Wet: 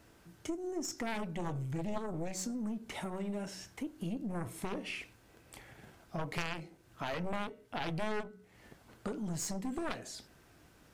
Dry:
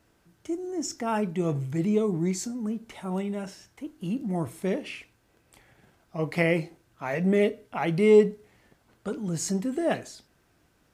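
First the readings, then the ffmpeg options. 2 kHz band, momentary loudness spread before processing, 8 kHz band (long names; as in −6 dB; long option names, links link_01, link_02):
−8.0 dB, 16 LU, −6.0 dB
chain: -af "aeval=exprs='0.398*(cos(1*acos(clip(val(0)/0.398,-1,1)))-cos(1*PI/2))+0.0794*(cos(3*acos(clip(val(0)/0.398,-1,1)))-cos(3*PI/2))+0.126*(cos(4*acos(clip(val(0)/0.398,-1,1)))-cos(4*PI/2))+0.1*(cos(7*acos(clip(val(0)/0.398,-1,1)))-cos(7*PI/2))':channel_layout=same,acompressor=threshold=-38dB:ratio=4,bandreject=frequency=186.3:width_type=h:width=4,bandreject=frequency=372.6:width_type=h:width=4,bandreject=frequency=558.9:width_type=h:width=4,bandreject=frequency=745.2:width_type=h:width=4,bandreject=frequency=931.5:width_type=h:width=4,bandreject=frequency=1117.8:width_type=h:width=4,bandreject=frequency=1304.1:width_type=h:width=4,bandreject=frequency=1490.4:width_type=h:width=4,volume=1.5dB"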